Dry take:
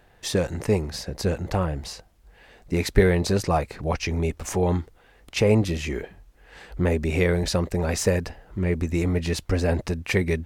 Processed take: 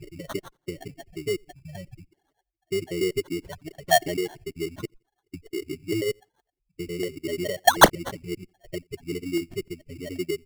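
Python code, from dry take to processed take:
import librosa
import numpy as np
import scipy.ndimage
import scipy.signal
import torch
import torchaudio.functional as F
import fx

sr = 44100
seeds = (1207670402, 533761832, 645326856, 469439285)

p1 = fx.block_reorder(x, sr, ms=97.0, group=7)
p2 = fx.highpass(p1, sr, hz=61.0, slope=6)
p3 = fx.schmitt(p2, sr, flips_db=-30.5)
p4 = p2 + (p3 * librosa.db_to_amplitude(-7.0))
p5 = fx.spec_gate(p4, sr, threshold_db=-10, keep='strong')
p6 = p5 + fx.echo_feedback(p5, sr, ms=86, feedback_pct=27, wet_db=-21.5, dry=0)
p7 = fx.dereverb_blind(p6, sr, rt60_s=1.3)
p8 = fx.peak_eq(p7, sr, hz=340.0, db=12.0, octaves=1.5)
p9 = fx.env_lowpass_down(p8, sr, base_hz=1200.0, full_db=-10.0)
p10 = fx.fixed_phaser(p9, sr, hz=330.0, stages=8)
p11 = fx.spec_paint(p10, sr, seeds[0], shape='rise', start_s=7.67, length_s=0.23, low_hz=650.0, high_hz=8700.0, level_db=-9.0)
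p12 = fx.filter_lfo_lowpass(p11, sr, shape='square', hz=0.64, low_hz=680.0, high_hz=4300.0, q=8.0)
p13 = fx.sample_hold(p12, sr, seeds[1], rate_hz=2500.0, jitter_pct=0)
y = p13 * librosa.db_to_amplitude(-13.0)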